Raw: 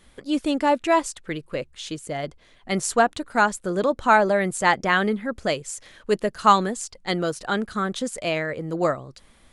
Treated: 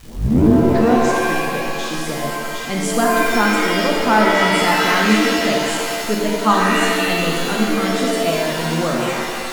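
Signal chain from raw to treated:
turntable start at the beginning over 1.23 s
parametric band 210 Hz +7.5 dB 0.7 octaves
in parallel at +1 dB: upward compression, threshold −19 dBFS
on the sum: surface crackle 440 per second −23 dBFS
on a send: echo through a band-pass that steps 755 ms, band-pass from 2,800 Hz, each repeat 0.7 octaves, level −2.5 dB
on the sum: reverb with rising layers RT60 1.9 s, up +7 semitones, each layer −2 dB, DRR −1.5 dB
level −9 dB

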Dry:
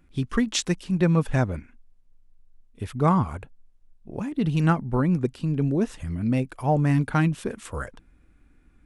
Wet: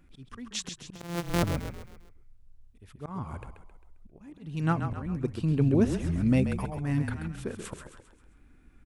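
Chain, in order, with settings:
0:00.95–0:01.43: samples sorted by size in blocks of 256 samples
volume swells 621 ms
echo with shifted repeats 133 ms, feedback 46%, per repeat −33 Hz, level −7.5 dB

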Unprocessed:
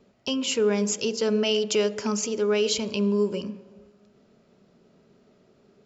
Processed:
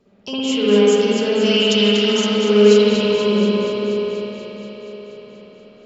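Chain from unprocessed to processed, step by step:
0:01.30–0:02.20: octave-band graphic EQ 125/250/500/4,000 Hz −9/+4/−11/+8 dB
on a send: delay that swaps between a low-pass and a high-pass 120 ms, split 1,400 Hz, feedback 85%, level −7.5 dB
on the sum: spring reverb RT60 3.6 s, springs 53/58 ms, chirp 25 ms, DRR −10 dB
level −2 dB

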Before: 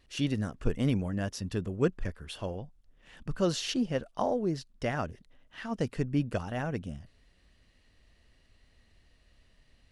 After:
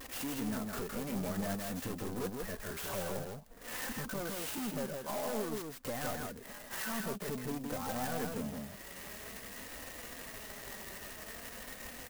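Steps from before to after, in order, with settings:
high-shelf EQ 2,200 Hz −2.5 dB
transient designer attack +3 dB, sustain −5 dB
downward compressor 3 to 1, threshold −45 dBFS, peak gain reduction 19.5 dB
mid-hump overdrive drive 37 dB, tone 3,200 Hz, clips at −29 dBFS
pitch vibrato 0.31 Hz 14 cents
tempo change 0.82×
flanger 0.51 Hz, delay 3.7 ms, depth 1.6 ms, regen +42%
single-tap delay 161 ms −3.5 dB
converter with an unsteady clock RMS 0.08 ms
level +1.5 dB

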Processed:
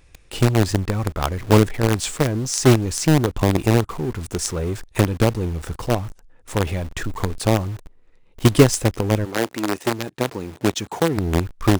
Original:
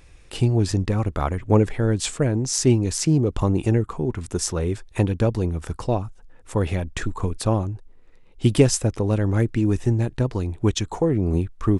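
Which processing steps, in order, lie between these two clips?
in parallel at −6 dB: log-companded quantiser 2 bits
0:09.24–0:11.16: on the sum: high-pass filter 360 Hz → 120 Hz 12 dB per octave
level −3 dB

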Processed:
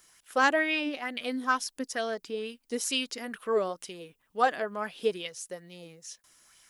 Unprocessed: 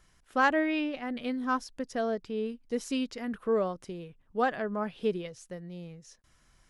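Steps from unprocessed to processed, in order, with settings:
RIAA equalisation recording
auto-filter bell 2.2 Hz 260–3,300 Hz +8 dB

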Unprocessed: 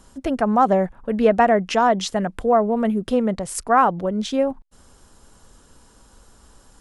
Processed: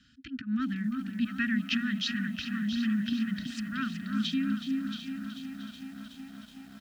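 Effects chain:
volume swells 129 ms
dynamic equaliser 1,400 Hz, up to −4 dB, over −32 dBFS, Q 1.4
Chebyshev band-stop filter 280–1,500 Hz, order 5
loudspeaker in its box 170–4,200 Hz, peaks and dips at 180 Hz −10 dB, 650 Hz −9 dB, 1,100 Hz +8 dB, 2,100 Hz −8 dB
comb filter 1.6 ms, depth 38%
delay that swaps between a low-pass and a high-pass 338 ms, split 1,300 Hz, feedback 52%, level −3.5 dB
feedback echo at a low word length 372 ms, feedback 80%, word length 9 bits, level −10.5 dB

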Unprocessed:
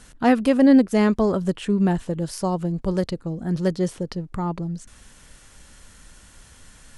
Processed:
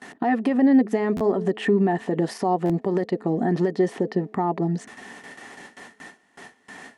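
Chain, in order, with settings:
meter weighting curve A
noise gate with hold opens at −41 dBFS
high-shelf EQ 4,100 Hz −6 dB
notch filter 510 Hz, Q 12
hum removal 215 Hz, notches 3
downward compressor 6 to 1, threshold −34 dBFS, peak gain reduction 16 dB
brickwall limiter −31.5 dBFS, peak gain reduction 11 dB
hollow resonant body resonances 250/390/710/1,800 Hz, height 17 dB, ringing for 20 ms
buffer that repeats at 0:01.16/0:02.65, samples 512, times 3
level +4 dB

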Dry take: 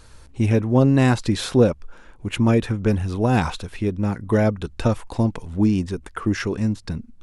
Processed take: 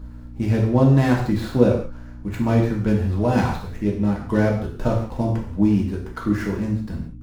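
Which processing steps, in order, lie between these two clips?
running median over 15 samples
mains hum 60 Hz, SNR 16 dB
reverb whose tail is shaped and stops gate 210 ms falling, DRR −2 dB
level −3.5 dB

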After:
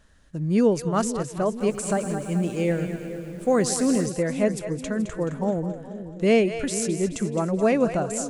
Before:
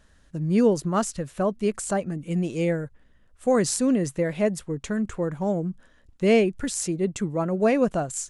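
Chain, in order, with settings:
echo with a time of its own for lows and highs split 460 Hz, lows 486 ms, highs 214 ms, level −10 dB
0:01.49–0:04.06: feedback echo at a low word length 112 ms, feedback 80%, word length 8 bits, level −13 dB

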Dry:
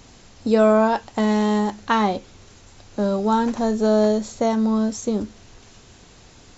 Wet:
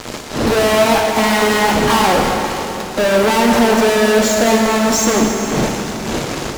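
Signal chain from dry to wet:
spectral magnitudes quantised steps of 15 dB
wind on the microphone 240 Hz −36 dBFS
bass and treble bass −14 dB, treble −5 dB
fuzz pedal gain 45 dB, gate −46 dBFS
dense smooth reverb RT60 3.7 s, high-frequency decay 0.85×, DRR 0.5 dB
level −1 dB

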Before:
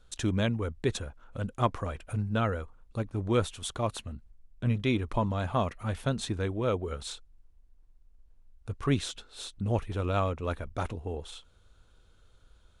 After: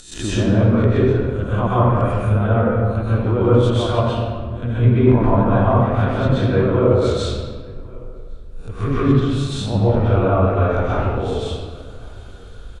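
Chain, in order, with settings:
peak hold with a rise ahead of every peak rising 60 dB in 0.33 s
upward compression, threshold −41 dBFS
slap from a distant wall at 190 metres, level −24 dB
treble cut that deepens with the level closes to 970 Hz, closed at −23.5 dBFS
convolution reverb RT60 1.6 s, pre-delay 119 ms, DRR −9 dB
level +3 dB

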